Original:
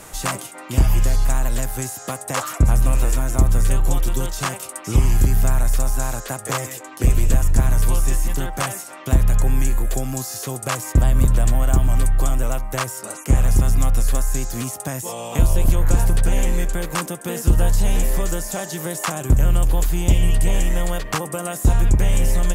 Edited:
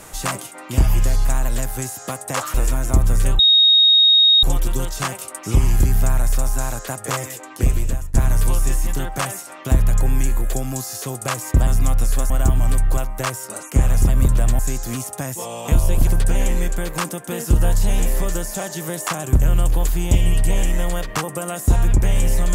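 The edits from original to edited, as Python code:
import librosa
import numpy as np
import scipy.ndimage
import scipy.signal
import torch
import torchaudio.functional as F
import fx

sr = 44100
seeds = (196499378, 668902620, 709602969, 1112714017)

y = fx.edit(x, sr, fx.cut(start_s=2.54, length_s=0.45),
    fx.insert_tone(at_s=3.84, length_s=1.04, hz=3740.0, db=-9.0),
    fx.fade_out_to(start_s=6.82, length_s=0.73, curve='qsin', floor_db=-22.5),
    fx.swap(start_s=11.08, length_s=0.5, other_s=13.63, other_length_s=0.63),
    fx.cut(start_s=12.25, length_s=0.26),
    fx.cut(start_s=15.74, length_s=0.3), tone=tone)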